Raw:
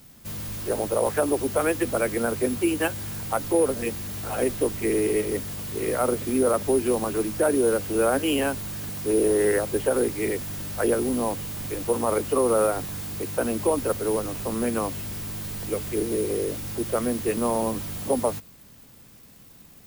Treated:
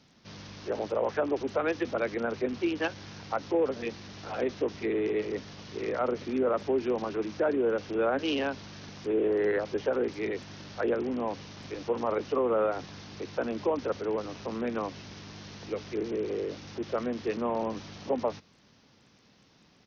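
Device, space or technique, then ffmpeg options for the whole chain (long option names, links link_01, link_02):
Bluetooth headset: -af "highpass=frequency=170:poles=1,aresample=16000,aresample=44100,volume=-4.5dB" -ar 48000 -c:a sbc -b:a 64k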